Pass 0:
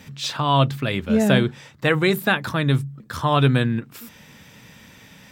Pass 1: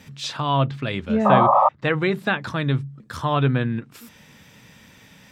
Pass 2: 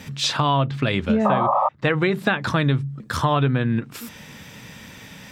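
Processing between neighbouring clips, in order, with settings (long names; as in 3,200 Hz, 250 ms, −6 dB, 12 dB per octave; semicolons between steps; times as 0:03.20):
sound drawn into the spectrogram noise, 0:01.25–0:01.69, 530–1,300 Hz −13 dBFS; treble cut that deepens with the level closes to 2,500 Hz, closed at −13 dBFS; level −2.5 dB
downward compressor 8 to 1, threshold −24 dBFS, peak gain reduction 14.5 dB; level +8 dB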